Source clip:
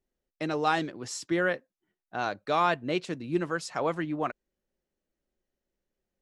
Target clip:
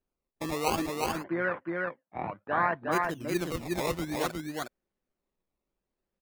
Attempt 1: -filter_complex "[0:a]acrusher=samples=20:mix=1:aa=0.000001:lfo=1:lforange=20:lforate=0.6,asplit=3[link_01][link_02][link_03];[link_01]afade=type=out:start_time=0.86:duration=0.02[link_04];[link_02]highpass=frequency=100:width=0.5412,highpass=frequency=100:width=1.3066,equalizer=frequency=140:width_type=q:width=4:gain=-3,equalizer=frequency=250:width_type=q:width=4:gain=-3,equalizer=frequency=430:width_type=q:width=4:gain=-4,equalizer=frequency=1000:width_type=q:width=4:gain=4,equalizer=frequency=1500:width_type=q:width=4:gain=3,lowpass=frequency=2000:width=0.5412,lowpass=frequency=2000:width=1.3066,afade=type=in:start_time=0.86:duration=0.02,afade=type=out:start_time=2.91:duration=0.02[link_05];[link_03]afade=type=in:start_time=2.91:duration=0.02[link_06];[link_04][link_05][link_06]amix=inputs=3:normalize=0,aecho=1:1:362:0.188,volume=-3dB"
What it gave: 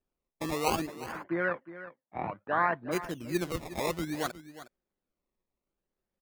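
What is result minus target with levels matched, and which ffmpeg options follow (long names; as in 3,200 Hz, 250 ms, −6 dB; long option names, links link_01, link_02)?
echo-to-direct −12 dB
-filter_complex "[0:a]acrusher=samples=20:mix=1:aa=0.000001:lfo=1:lforange=20:lforate=0.6,asplit=3[link_01][link_02][link_03];[link_01]afade=type=out:start_time=0.86:duration=0.02[link_04];[link_02]highpass=frequency=100:width=0.5412,highpass=frequency=100:width=1.3066,equalizer=frequency=140:width_type=q:width=4:gain=-3,equalizer=frequency=250:width_type=q:width=4:gain=-3,equalizer=frequency=430:width_type=q:width=4:gain=-4,equalizer=frequency=1000:width_type=q:width=4:gain=4,equalizer=frequency=1500:width_type=q:width=4:gain=3,lowpass=frequency=2000:width=0.5412,lowpass=frequency=2000:width=1.3066,afade=type=in:start_time=0.86:duration=0.02,afade=type=out:start_time=2.91:duration=0.02[link_05];[link_03]afade=type=in:start_time=2.91:duration=0.02[link_06];[link_04][link_05][link_06]amix=inputs=3:normalize=0,aecho=1:1:362:0.75,volume=-3dB"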